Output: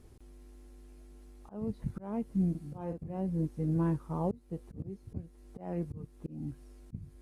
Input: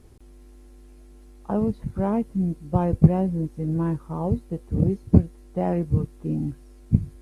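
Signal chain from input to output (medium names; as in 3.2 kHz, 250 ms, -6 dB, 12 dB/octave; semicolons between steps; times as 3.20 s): slow attack 368 ms; 2.50–3.17 s: doubling 48 ms -6 dB; trim -5 dB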